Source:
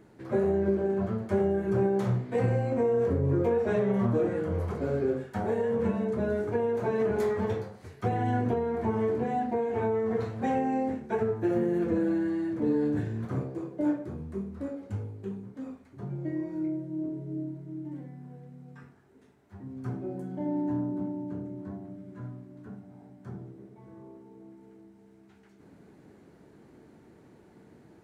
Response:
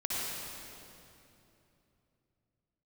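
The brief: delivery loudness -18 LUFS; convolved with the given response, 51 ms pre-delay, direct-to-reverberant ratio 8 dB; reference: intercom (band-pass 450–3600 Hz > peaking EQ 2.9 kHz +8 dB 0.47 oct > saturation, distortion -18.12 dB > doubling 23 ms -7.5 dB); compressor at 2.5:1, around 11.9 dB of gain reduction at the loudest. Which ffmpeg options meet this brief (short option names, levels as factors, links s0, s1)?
-filter_complex "[0:a]acompressor=threshold=0.00891:ratio=2.5,asplit=2[s0][s1];[1:a]atrim=start_sample=2205,adelay=51[s2];[s1][s2]afir=irnorm=-1:irlink=0,volume=0.188[s3];[s0][s3]amix=inputs=2:normalize=0,highpass=450,lowpass=3600,equalizer=f=2900:t=o:w=0.47:g=8,asoftclip=threshold=0.0158,asplit=2[s4][s5];[s5]adelay=23,volume=0.422[s6];[s4][s6]amix=inputs=2:normalize=0,volume=21.1"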